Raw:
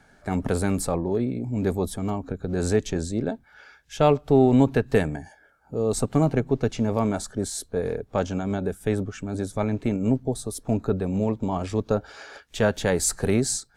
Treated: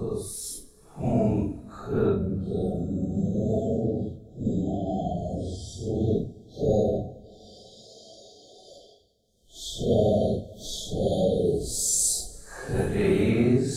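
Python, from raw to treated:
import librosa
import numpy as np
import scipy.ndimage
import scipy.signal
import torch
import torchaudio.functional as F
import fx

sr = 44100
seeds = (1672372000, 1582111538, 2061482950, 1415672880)

y = fx.spec_erase(x, sr, start_s=10.98, length_s=2.17, low_hz=760.0, high_hz=3100.0)
y = fx.paulstretch(y, sr, seeds[0], factor=4.6, window_s=0.05, from_s=10.46)
y = fx.rev_double_slope(y, sr, seeds[1], early_s=0.54, late_s=4.7, knee_db=-18, drr_db=12.0)
y = y * librosa.db_to_amplitude(-2.0)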